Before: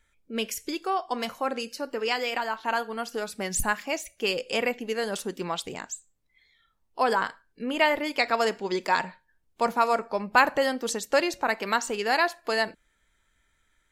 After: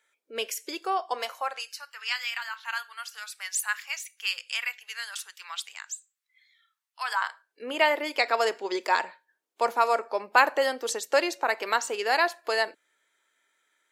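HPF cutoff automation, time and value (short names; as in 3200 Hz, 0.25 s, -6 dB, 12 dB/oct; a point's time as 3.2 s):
HPF 24 dB/oct
1.09 s 380 Hz
1.9 s 1300 Hz
7 s 1300 Hz
7.67 s 340 Hz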